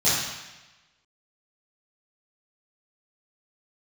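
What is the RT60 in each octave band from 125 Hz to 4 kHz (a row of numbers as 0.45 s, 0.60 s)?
1.1 s, 1.0 s, 1.1 s, 1.1 s, 1.2 s, 1.1 s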